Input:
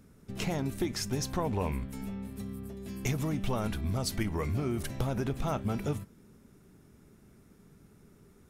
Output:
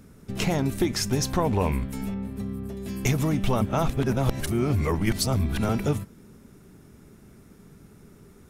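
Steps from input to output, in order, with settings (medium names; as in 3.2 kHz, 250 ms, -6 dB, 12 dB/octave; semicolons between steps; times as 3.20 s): 2.14–2.69 s: treble shelf 2.6 kHz -9 dB; 3.61–5.69 s: reverse; trim +7.5 dB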